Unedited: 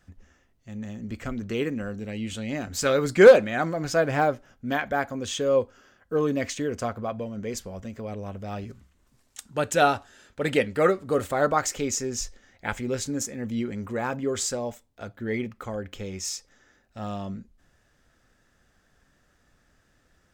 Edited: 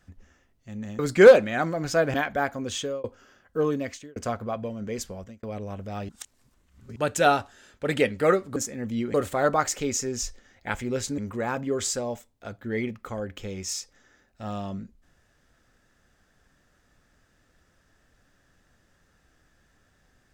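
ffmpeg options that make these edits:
-filter_complex "[0:a]asplit=11[a][b][c][d][e][f][g][h][i][j][k];[a]atrim=end=0.992[l];[b]atrim=start=2.988:end=4.142[m];[c]atrim=start=4.698:end=5.6,asetpts=PTS-STARTPTS,afade=t=out:st=0.632:d=0.27[n];[d]atrim=start=5.6:end=6.72,asetpts=PTS-STARTPTS,afade=t=in:d=0.004:c=hsin,afade=t=out:st=0.59:d=0.53[o];[e]atrim=start=6.72:end=7.99,asetpts=PTS-STARTPTS,afade=t=in:d=0.004:c=hsin,afade=t=out:st=0.99:d=0.28[p];[f]atrim=start=7.99:end=8.652,asetpts=PTS-STARTPTS,afade=t=in:d=0.004:c=hsin[q];[g]atrim=start=8.648:end=9.522,asetpts=PTS-STARTPTS,areverse[r];[h]atrim=start=9.518:end=11.122[s];[i]atrim=start=13.158:end=13.742[t];[j]atrim=start=11.118:end=13.162[u];[k]atrim=start=13.738[v];[l][m]acrossfade=d=0.004:c1=hsin:c2=hsin[w];[n][o][p][q]concat=n=4:v=0:a=1[x];[w][x]acrossfade=d=0.004:c1=hsin:c2=hsin[y];[y][r]acrossfade=d=0.004:c1=hsin:c2=hsin[z];[z][s]acrossfade=d=0.004:c1=hsin:c2=hsin[aa];[aa][t]acrossfade=d=0.004:c1=hsin:c2=hsin[ab];[ab][u]acrossfade=d=0.004:c1=hsin:c2=hsin[ac];[ac][v]acrossfade=d=0.004:c1=hsin:c2=hsin"

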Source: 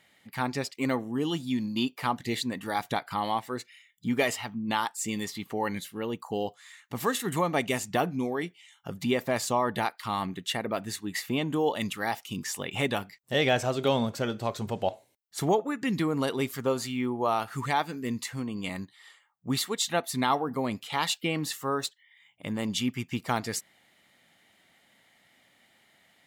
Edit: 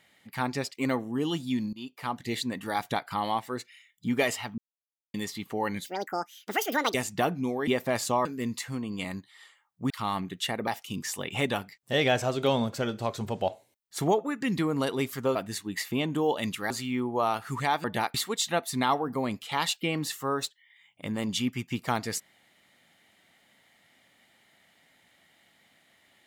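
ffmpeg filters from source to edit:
-filter_complex "[0:a]asplit=14[a][b][c][d][e][f][g][h][i][j][k][l][m][n];[a]atrim=end=1.73,asetpts=PTS-STARTPTS,afade=t=out:st=1.726:d=0.004:c=hsin:silence=0.0891251[o];[b]atrim=start=1.73:end=4.58,asetpts=PTS-STARTPTS,afade=t=in:d=0.91:c=qsin:silence=0.0891251,afade=t=out:st=2.846:d=0.004:c=hsin[p];[c]atrim=start=4.58:end=5.14,asetpts=PTS-STARTPTS,volume=0[q];[d]atrim=start=5.14:end=5.864,asetpts=PTS-STARTPTS,afade=t=in:d=0.004:c=hsin[r];[e]atrim=start=5.86:end=7.7,asetpts=PTS-STARTPTS,asetrate=74970,aresample=44100[s];[f]atrim=start=7.696:end=8.432[t];[g]atrim=start=9.078:end=9.662[u];[h]atrim=start=17.898:end=19.552[v];[i]atrim=start=9.958:end=10.732[w];[j]atrim=start=12.078:end=16.762[x];[k]atrim=start=10.728:end=12.082[y];[l]atrim=start=16.758:end=17.902[z];[m]atrim=start=9.658:end=9.962[aa];[n]atrim=start=19.548[ab];[o][p][q][r]concat=n=4:v=0:a=1[ac];[ac][s]acrossfade=d=0.004:c1=hsin:c2=hsin[ad];[ad][t]acrossfade=d=0.004:c1=hsin:c2=hsin[ae];[ae][u]acrossfade=d=0.004:c1=hsin:c2=hsin[af];[af][v]acrossfade=d=0.004:c1=hsin:c2=hsin[ag];[ag][w]acrossfade=d=0.004:c1=hsin:c2=hsin[ah];[ah][x]acrossfade=d=0.004:c1=hsin:c2=hsin[ai];[ai][y]acrossfade=d=0.004:c1=hsin:c2=hsin[aj];[aj][z]acrossfade=d=0.004:c1=hsin:c2=hsin[ak];[ak][aa]acrossfade=d=0.004:c1=hsin:c2=hsin[al];[al][ab]acrossfade=d=0.004:c1=hsin:c2=hsin"

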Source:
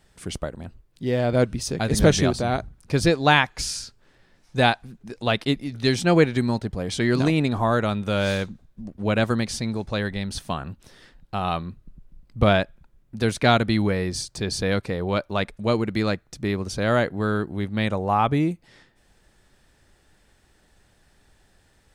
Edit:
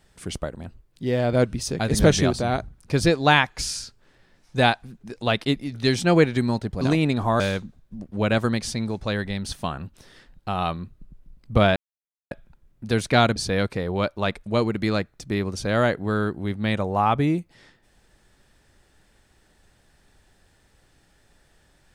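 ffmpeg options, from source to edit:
-filter_complex "[0:a]asplit=5[a][b][c][d][e];[a]atrim=end=6.812[f];[b]atrim=start=7.158:end=7.752[g];[c]atrim=start=8.258:end=12.62,asetpts=PTS-STARTPTS,afade=t=out:st=4.358:d=0.004:c=hsin,apad=pad_dur=0.55[h];[d]atrim=start=12.62:end=13.672,asetpts=PTS-STARTPTS,afade=t=in:d=0.004:c=hsin[i];[e]atrim=start=14.488[j];[f][g]acrossfade=d=0.004:c1=hsin:c2=hsin[k];[h][i]concat=n=2:v=0:a=1[l];[k][l]acrossfade=d=0.004:c1=hsin:c2=hsin[m];[m][j]acrossfade=d=0.004:c1=hsin:c2=hsin"

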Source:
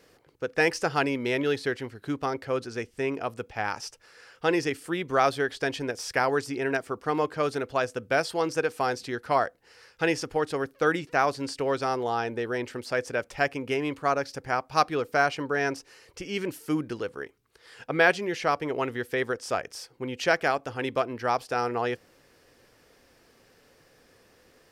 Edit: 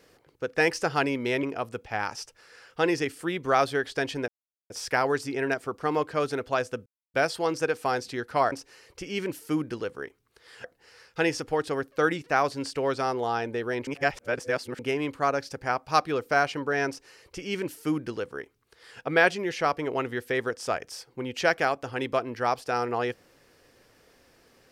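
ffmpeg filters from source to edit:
-filter_complex "[0:a]asplit=8[a][b][c][d][e][f][g][h];[a]atrim=end=1.432[i];[b]atrim=start=3.078:end=5.93,asetpts=PTS-STARTPTS,afade=t=out:st=2.848:d=0.004:c=hsin,apad=pad_dur=0.42[j];[c]atrim=start=5.93:end=8.09,asetpts=PTS-STARTPTS,afade=t=in:d=0.004:c=hsin,afade=t=out:st=2.156:d=0.004:c=hsin,apad=pad_dur=0.28[k];[d]atrim=start=8.09:end=9.472,asetpts=PTS-STARTPTS,afade=t=in:d=0.004:c=hsin[l];[e]atrim=start=15.708:end=17.832[m];[f]atrim=start=9.468:end=12.702[n];[g]atrim=start=12.698:end=13.622,asetpts=PTS-STARTPTS,areverse[o];[h]atrim=start=13.618[p];[j][k][l]concat=n=3:v=0:a=1[q];[i][q]acrossfade=d=0.004:c1=hsin:c2=hsin[r];[r][m]acrossfade=d=0.004:c1=hsin:c2=hsin[s];[s][n]acrossfade=d=0.004:c1=hsin:c2=hsin[t];[t][o]acrossfade=d=0.004:c1=hsin:c2=hsin[u];[u][p]acrossfade=d=0.004:c1=hsin:c2=hsin"

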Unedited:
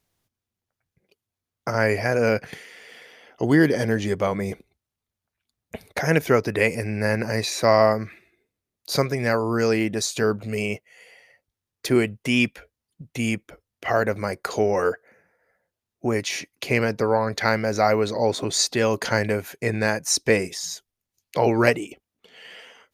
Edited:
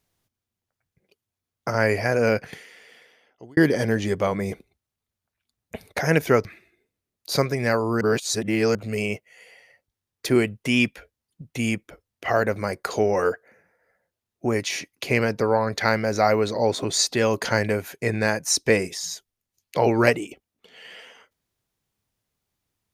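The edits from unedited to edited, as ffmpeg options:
-filter_complex "[0:a]asplit=5[a][b][c][d][e];[a]atrim=end=3.57,asetpts=PTS-STARTPTS,afade=t=out:st=2.34:d=1.23[f];[b]atrim=start=3.57:end=6.452,asetpts=PTS-STARTPTS,afade=t=in:d=0.004:c=hsin[g];[c]atrim=start=8.048:end=9.612[h];[d]atrim=start=9.608:end=10.352,asetpts=PTS-STARTPTS,areverse[i];[e]atrim=start=10.348[j];[f][g]concat=n=2:v=0:a=1[k];[k][h]acrossfade=d=0.004:c1=hsin:c2=hsin[l];[l][i]acrossfade=d=0.004:c1=hsin:c2=hsin[m];[m][j]acrossfade=d=0.004:c1=hsin:c2=hsin"

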